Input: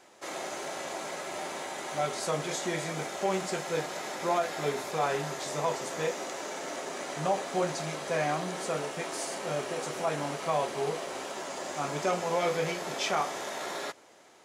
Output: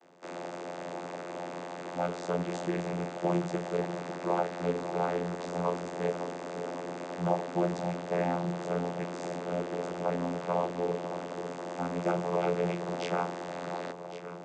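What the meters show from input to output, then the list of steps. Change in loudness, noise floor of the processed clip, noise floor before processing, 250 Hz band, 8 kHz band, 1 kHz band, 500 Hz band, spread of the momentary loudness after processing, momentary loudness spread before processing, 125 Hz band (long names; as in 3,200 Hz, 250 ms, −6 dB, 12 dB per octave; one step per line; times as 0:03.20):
−1.0 dB, −42 dBFS, −55 dBFS, +4.0 dB, −13.5 dB, −2.0 dB, 0.0 dB, 9 LU, 7 LU, +4.0 dB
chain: delay that swaps between a low-pass and a high-pass 553 ms, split 1,100 Hz, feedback 72%, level −9 dB
channel vocoder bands 16, saw 87.3 Hz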